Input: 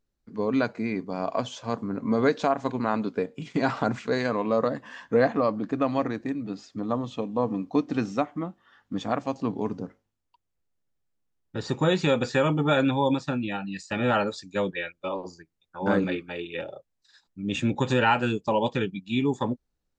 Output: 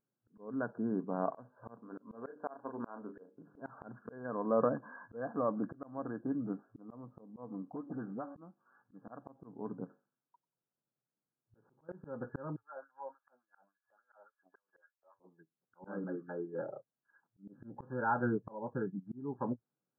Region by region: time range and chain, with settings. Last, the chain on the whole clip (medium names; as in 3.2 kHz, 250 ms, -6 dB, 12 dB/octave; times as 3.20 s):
1.80–3.62 s: peaking EQ 140 Hz -13.5 dB 0.92 oct + hum notches 50/100/150/200/250/300/350/400 Hz + doubling 34 ms -9.5 dB
7.72–8.35 s: de-hum 281.8 Hz, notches 4 + compression 3:1, threshold -35 dBFS + phase dispersion highs, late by 43 ms, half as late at 1.4 kHz
9.84–11.89 s: feedback echo behind a high-pass 93 ms, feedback 39%, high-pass 2.3 kHz, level -12 dB + compression 4:1, threshold -40 dBFS
12.56–15.20 s: companding laws mixed up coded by A + compression 12:1, threshold -38 dBFS + LFO high-pass sine 3.5 Hz 580–3400 Hz
whole clip: FFT band-pass 110–1700 Hz; slow attack 537 ms; trim -4.5 dB